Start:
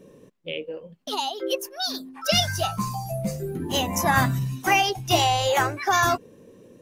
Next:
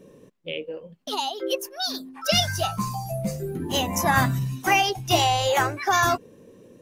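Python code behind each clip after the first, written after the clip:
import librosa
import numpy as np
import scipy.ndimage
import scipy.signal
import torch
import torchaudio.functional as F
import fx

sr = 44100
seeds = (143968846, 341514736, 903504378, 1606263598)

y = x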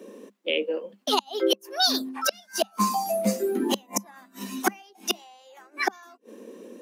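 y = fx.gate_flip(x, sr, shuts_db=-15.0, range_db=-35)
y = scipy.signal.sosfilt(scipy.signal.cheby1(8, 1.0, 200.0, 'highpass', fs=sr, output='sos'), y)
y = y * 10.0 ** (7.0 / 20.0)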